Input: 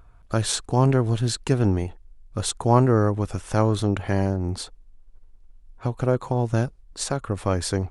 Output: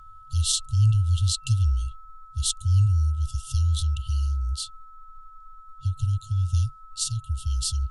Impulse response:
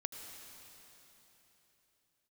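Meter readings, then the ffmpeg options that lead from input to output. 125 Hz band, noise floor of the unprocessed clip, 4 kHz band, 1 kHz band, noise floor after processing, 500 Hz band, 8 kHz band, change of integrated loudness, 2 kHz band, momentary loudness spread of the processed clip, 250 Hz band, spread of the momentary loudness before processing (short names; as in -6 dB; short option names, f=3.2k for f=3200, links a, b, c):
+0.5 dB, -50 dBFS, +2.0 dB, -14.5 dB, -47 dBFS, under -40 dB, +2.0 dB, -1.5 dB, under -15 dB, 10 LU, under -20 dB, 11 LU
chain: -af "afreqshift=-27,afftfilt=real='re*(1-between(b*sr/4096,130,2700))':imag='im*(1-between(b*sr/4096,130,2700))':win_size=4096:overlap=0.75,aeval=exprs='val(0)+0.00398*sin(2*PI*1300*n/s)':c=same,volume=2dB"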